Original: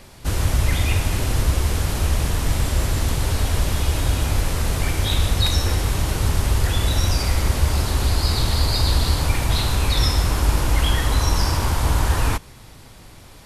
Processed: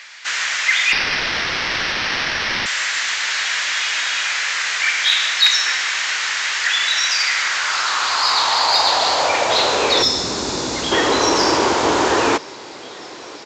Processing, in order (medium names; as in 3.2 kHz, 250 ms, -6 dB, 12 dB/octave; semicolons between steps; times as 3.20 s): high-pass sweep 1.8 kHz -> 370 Hz, 7.30–10.25 s; 0.92–2.66 s: careless resampling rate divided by 6×, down none, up hold; on a send: thinning echo 995 ms, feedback 74%, level -23.5 dB; 10.02–10.92 s: on the sum: time-frequency box 270–3400 Hz -9 dB; resampled via 16 kHz; in parallel at -10 dB: saturation -19 dBFS, distortion -17 dB; on the sum: trim +6.5 dB